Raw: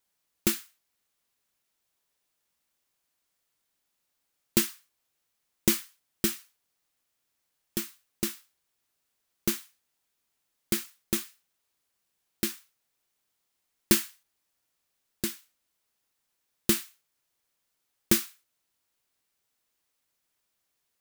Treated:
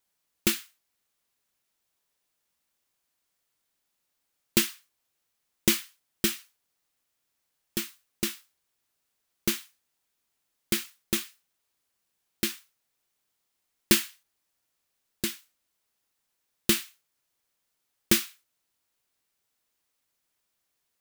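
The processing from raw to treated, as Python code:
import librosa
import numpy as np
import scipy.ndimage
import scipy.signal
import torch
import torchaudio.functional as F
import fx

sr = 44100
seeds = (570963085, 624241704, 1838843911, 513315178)

y = fx.dynamic_eq(x, sr, hz=2900.0, q=0.88, threshold_db=-47.0, ratio=4.0, max_db=6)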